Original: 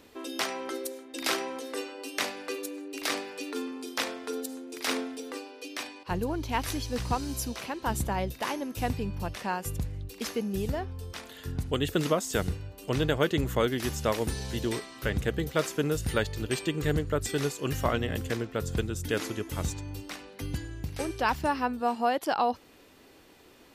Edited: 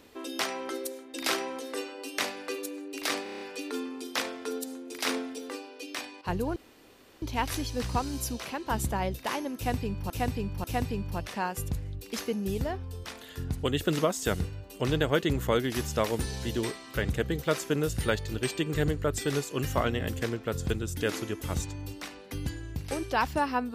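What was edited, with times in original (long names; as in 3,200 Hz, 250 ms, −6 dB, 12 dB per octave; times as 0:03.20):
0:03.23: stutter 0.03 s, 7 plays
0:06.38: splice in room tone 0.66 s
0:08.72–0:09.26: repeat, 3 plays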